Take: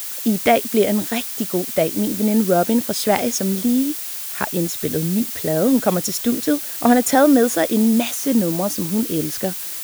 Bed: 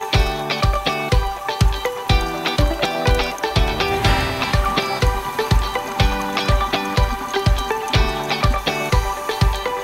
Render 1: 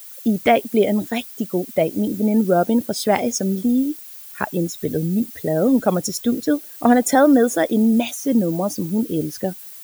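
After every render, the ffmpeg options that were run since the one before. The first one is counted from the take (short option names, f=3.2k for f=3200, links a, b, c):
-af "afftdn=nr=14:nf=-29"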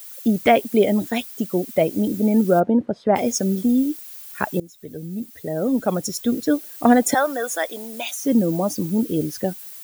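-filter_complex "[0:a]asplit=3[a][b][c];[a]afade=t=out:st=2.59:d=0.02[d];[b]lowpass=1.3k,afade=t=in:st=2.59:d=0.02,afade=t=out:st=3.15:d=0.02[e];[c]afade=t=in:st=3.15:d=0.02[f];[d][e][f]amix=inputs=3:normalize=0,asettb=1/sr,asplit=3[g][h][i];[g]atrim=end=7.144[j];[h]atrim=start=7.14:end=8.22,asetpts=PTS-STARTPTS,afade=t=in:d=0.004:c=qsin,afade=t=out:st=1.076:d=0.004:c=qsin,highpass=800[k];[i]atrim=start=8.216[l];[j][k]acrossfade=d=0.004:c1=hsin:c2=qsin[m];[m][l]acrossfade=d=0.004:c1=qsin:c2=hsin,asplit=2[n][o];[n]atrim=end=4.6,asetpts=PTS-STARTPTS,afade=t=out:st=4.596:d=0.004:c=hsin:silence=0.0944061[p];[o]atrim=start=4.6,asetpts=PTS-STARTPTS,afade=t=in:d=2.01:silence=0.0944061[q];[p][q]concat=n=2:v=0:a=1"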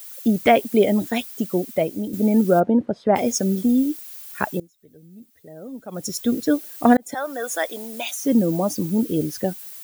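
-filter_complex "[0:a]asplit=5[a][b][c][d][e];[a]atrim=end=2.13,asetpts=PTS-STARTPTS,afade=t=out:st=1.54:d=0.59:silence=0.375837[f];[b]atrim=start=2.13:end=4.7,asetpts=PTS-STARTPTS,afade=t=in:d=0.004:c=hsin:silence=0.375837,afade=t=out:st=2.29:d=0.28:c=qsin:silence=0.177828[g];[c]atrim=start=4.7:end=5.91,asetpts=PTS-STARTPTS,volume=-15dB[h];[d]atrim=start=5.91:end=6.97,asetpts=PTS-STARTPTS,afade=t=in:d=0.28:c=qsin:silence=0.177828,afade=t=out:st=1.056:d=0.004:c=hsin[i];[e]atrim=start=6.97,asetpts=PTS-STARTPTS,afade=t=in:d=0.61[j];[f][g][h][i][j]concat=n=5:v=0:a=1"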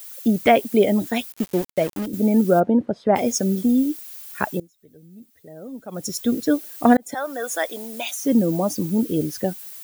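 -filter_complex "[0:a]asettb=1/sr,asplit=3[a][b][c];[a]atrim=end=1.324[d];[b]atrim=start=1.32:end=2.06,asetpts=PTS-STARTPTS,afade=t=in:d=0.004:c=qsin,afade=t=out:st=0.736:d=0.004:c=qsin,aeval=exprs='val(0)*gte(abs(val(0)),0.0376)':c=same[e];[c]atrim=start=2.056[f];[d][e]acrossfade=d=0.004:c1=hsin:c2=qsin[g];[g][f]acrossfade=d=0.004:c1=qsin:c2=hsin"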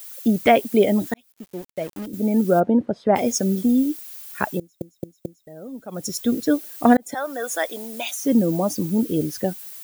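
-filter_complex "[0:a]asplit=6[a][b][c][d][e][f];[a]atrim=end=1.14,asetpts=PTS-STARTPTS,afade=t=out:st=1.136:d=0.004:c=hsin[g];[b]atrim=start=1.14:end=4.812,asetpts=PTS-STARTPTS,afade=t=in:d=1.55[h];[c]atrim=start=4.588:end=4.812[i];[d]atrim=start=4.588:end=4.812[j];[e]atrim=start=4.588:end=4.812[k];[f]atrim=start=5.468[l];[g][h]concat=n=2:v=0:a=1[m];[m][i]acrossfade=d=0.004:c1=hsin:c2=hsin[n];[n][j]acrossfade=d=0.004:c1=hsin:c2=hsin[o];[o][k]acrossfade=d=0.004:c1=hsin:c2=hsin[p];[p][l]acrossfade=d=0.004:c1=hsin:c2=hsin"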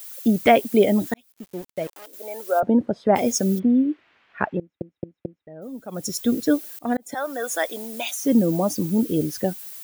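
-filter_complex "[0:a]asettb=1/sr,asplit=3[a][b][c];[a]atrim=end=1.874[d];[b]atrim=start=1.87:end=2.63,asetpts=PTS-STARTPTS,afade=t=in:d=0.004:c=qsin,afade=t=out:st=0.756:d=0.004:c=qsin,highpass=f=550:w=0.5412,highpass=f=550:w=1.3066[e];[c]atrim=start=2.626[f];[d][e]acrossfade=d=0.004:c1=hsin:c2=qsin[g];[g][f]acrossfade=d=0.004:c1=qsin:c2=hsin,asplit=3[h][i][j];[h]afade=t=out:st=3.58:d=0.02[k];[i]lowpass=f=2.5k:w=0.5412,lowpass=f=2.5k:w=1.3066,afade=t=in:st=3.58:d=0.02,afade=t=out:st=5.61:d=0.02[l];[j]afade=t=in:st=5.61:d=0.02[m];[k][l][m]amix=inputs=3:normalize=0,asplit=2[n][o];[n]atrim=end=6.79,asetpts=PTS-STARTPTS,afade=t=out:st=6.786:d=0.004:c=hsin:silence=0.0707946[p];[o]atrim=start=6.79,asetpts=PTS-STARTPTS,afade=t=in:d=0.43:silence=0.0707946[q];[p][q]concat=n=2:v=0:a=1"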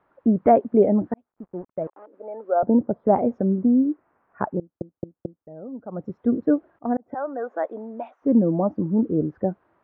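-af "lowpass=f=1.2k:w=0.5412,lowpass=f=1.2k:w=1.3066"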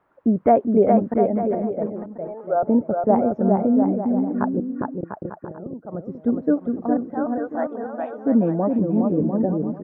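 -af "aecho=1:1:410|697|897.9|1039|1137:0.631|0.398|0.251|0.158|0.1"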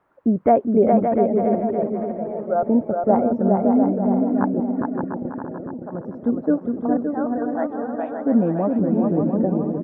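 -af "aecho=1:1:567|1134|1701|2268:0.473|0.166|0.058|0.0203"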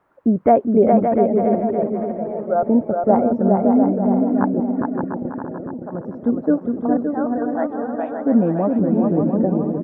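-af "volume=2dB"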